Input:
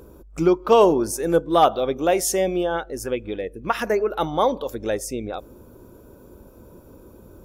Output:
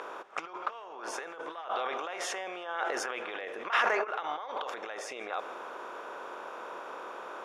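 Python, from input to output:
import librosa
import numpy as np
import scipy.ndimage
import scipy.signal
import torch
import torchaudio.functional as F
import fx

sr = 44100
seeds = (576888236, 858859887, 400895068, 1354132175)

y = fx.bin_compress(x, sr, power=0.6)
y = scipy.signal.sosfilt(scipy.signal.butter(2, 2100.0, 'lowpass', fs=sr, output='sos'), y)
y = fx.echo_feedback(y, sr, ms=156, feedback_pct=56, wet_db=-22.5)
y = fx.over_compress(y, sr, threshold_db=-24.0, ratio=-1.0)
y = scipy.signal.sosfilt(scipy.signal.butter(2, 1400.0, 'highpass', fs=sr, output='sos'), y)
y = fx.sustainer(y, sr, db_per_s=20.0, at=(1.71, 4.03), fade=0.02)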